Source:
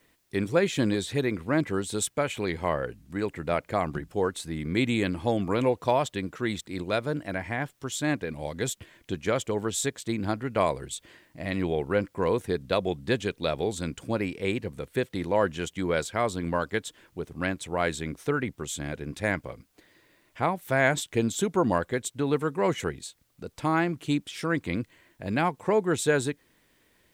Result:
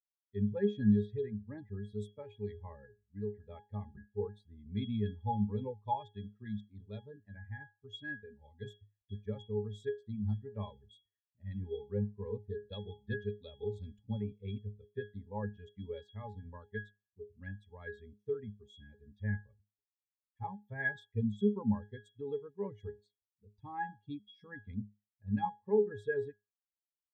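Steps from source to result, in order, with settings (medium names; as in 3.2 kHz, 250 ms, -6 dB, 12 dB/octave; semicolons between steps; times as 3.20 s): expander on every frequency bin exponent 2; pitch-class resonator G#, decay 0.24 s; 13.63–14.32 s: three bands compressed up and down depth 70%; trim +8.5 dB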